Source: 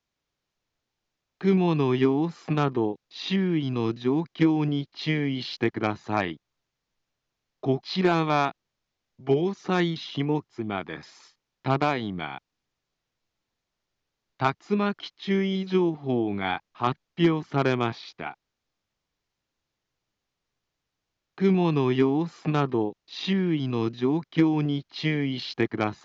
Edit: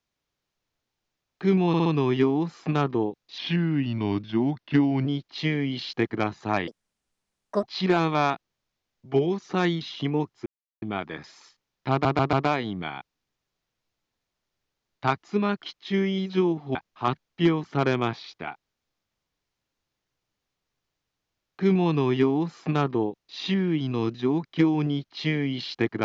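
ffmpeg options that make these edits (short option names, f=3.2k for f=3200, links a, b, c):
-filter_complex "[0:a]asplit=13[a][b][c][d][e][f][g][h][i][j][k][l][m];[a]atrim=end=1.742[n];[b]atrim=start=1.678:end=1.742[o];[c]atrim=start=1.678:end=1.742[p];[d]atrim=start=1.678:end=3.204[q];[e]atrim=start=3.2:end=4.7,asetpts=PTS-STARTPTS,asetrate=39249,aresample=44100[r];[f]atrim=start=4.696:end=6.314[s];[g]atrim=start=6.31:end=7.78,asetpts=PTS-STARTPTS,asetrate=67914,aresample=44100,atrim=end_sample=42095,asetpts=PTS-STARTPTS[t];[h]atrim=start=7.776:end=10.61,asetpts=PTS-STARTPTS,afade=t=out:st=2.83:d=0.004:c=hsin,apad=pad_dur=0.36[u];[i]atrim=start=10.61:end=11.842,asetpts=PTS-STARTPTS,afade=t=in:d=0.004:c=hsin[v];[j]atrim=start=11.698:end=11.842[w];[k]atrim=start=11.698:end=11.842[x];[l]atrim=start=11.698:end=16.122[y];[m]atrim=start=16.538[z];[n][o]acrossfade=d=0.004:c1=hsin:c2=hsin[aa];[aa][p]acrossfade=d=0.004:c1=hsin:c2=hsin[ab];[ab][q]acrossfade=d=0.004:c1=hsin:c2=hsin[ac];[ac][r]acrossfade=d=0.004:c1=hsin:c2=hsin[ad];[ad][s]acrossfade=d=0.004:c1=hsin:c2=hsin[ae];[ae][t]acrossfade=d=0.004:c1=hsin:c2=hsin[af];[u][v]concat=n=2:v=0:a=1[ag];[af][ag]acrossfade=d=0.004:c1=hsin:c2=hsin[ah];[ah][w]acrossfade=d=0.004:c1=hsin:c2=hsin[ai];[ai][x]acrossfade=d=0.004:c1=hsin:c2=hsin[aj];[aj][y]acrossfade=d=0.004:c1=hsin:c2=hsin[ak];[ak][z]acrossfade=d=0.004:c1=hsin:c2=hsin"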